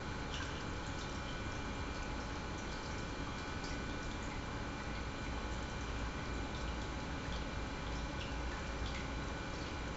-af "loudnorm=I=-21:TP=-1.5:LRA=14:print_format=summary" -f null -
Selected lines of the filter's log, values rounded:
Input Integrated:    -42.5 LUFS
Input True Peak:     -28.3 dBTP
Input LRA:             0.6 LU
Input Threshold:     -52.5 LUFS